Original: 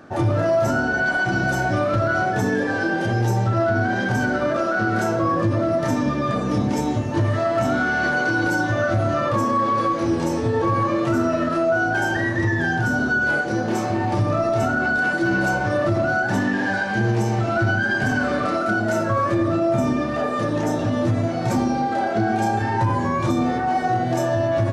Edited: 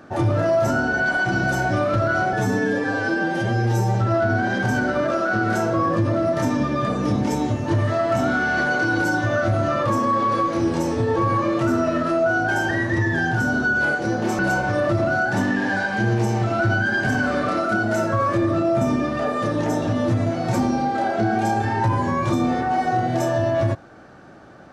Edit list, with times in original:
2.33–3.41 stretch 1.5×
13.85–15.36 cut

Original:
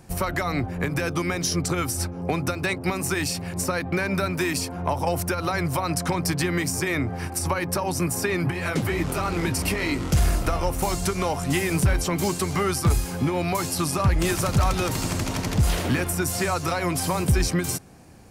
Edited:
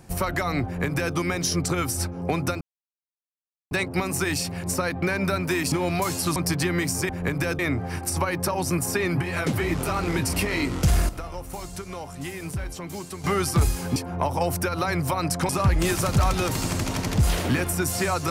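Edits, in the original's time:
0.65–1.15 copy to 6.88
2.61 insert silence 1.10 s
4.62–6.15 swap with 13.25–13.89
10.38–12.53 gain -10.5 dB

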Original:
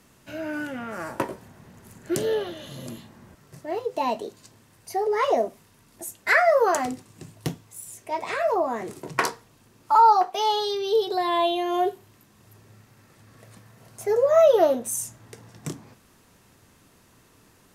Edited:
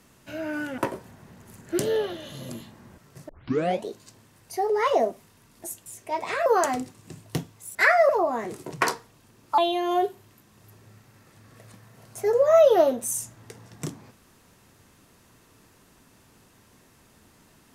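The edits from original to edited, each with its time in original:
0.78–1.15 cut
3.66 tape start 0.55 s
6.23–6.57 swap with 7.86–8.46
9.95–11.41 cut

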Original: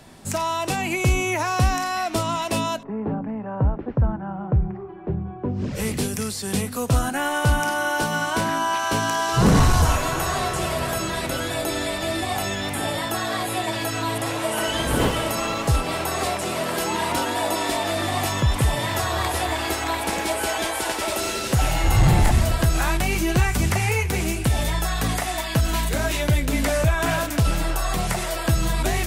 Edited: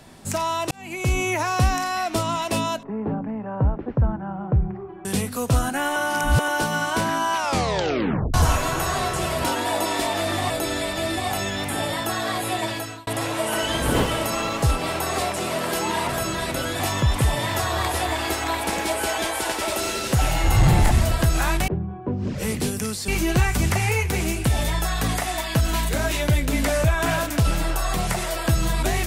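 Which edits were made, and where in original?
0.71–1.22 fade in
5.05–6.45 move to 23.08
7.36–7.88 reverse
8.76 tape stop 0.98 s
10.84–11.55 swap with 17.14–18.2
13.71–14.12 fade out

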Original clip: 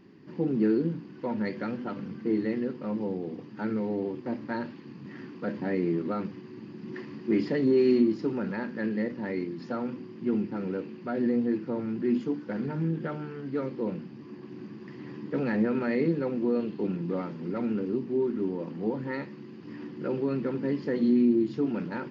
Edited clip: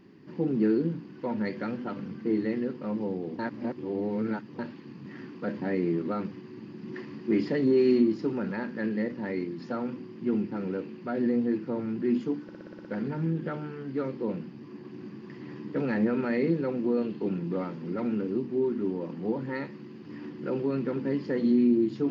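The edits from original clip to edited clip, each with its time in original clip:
3.39–4.59 reverse
12.43 stutter 0.06 s, 8 plays

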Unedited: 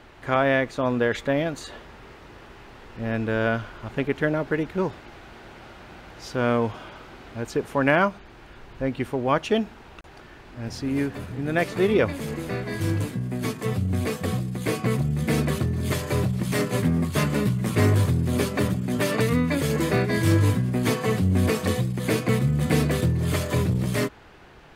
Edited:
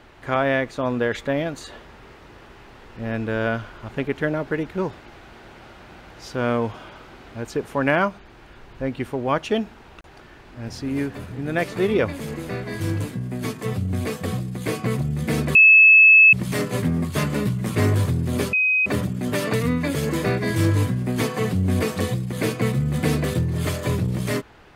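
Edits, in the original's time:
15.55–16.33 bleep 2600 Hz -7.5 dBFS
18.53 add tone 2520 Hz -16 dBFS 0.33 s

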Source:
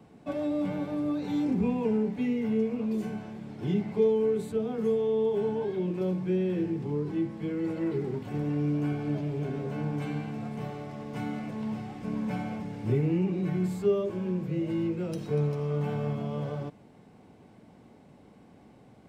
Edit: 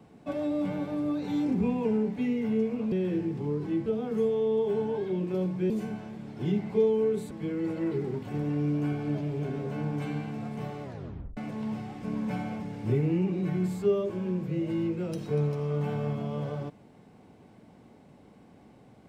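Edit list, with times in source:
2.92–4.53 swap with 6.37–7.31
10.83 tape stop 0.54 s

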